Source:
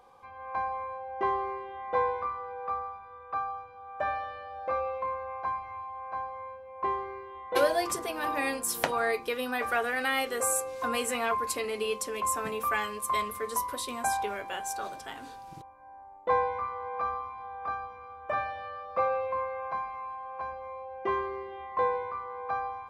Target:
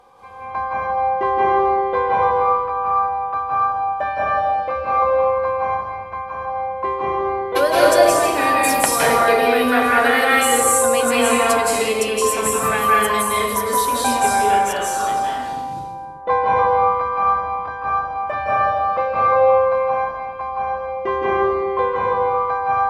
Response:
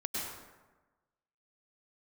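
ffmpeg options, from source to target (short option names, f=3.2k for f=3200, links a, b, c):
-filter_complex "[1:a]atrim=start_sample=2205,afade=t=out:st=0.41:d=0.01,atrim=end_sample=18522,asetrate=26460,aresample=44100[a];[0:a][a]afir=irnorm=-1:irlink=0,volume=6.5dB"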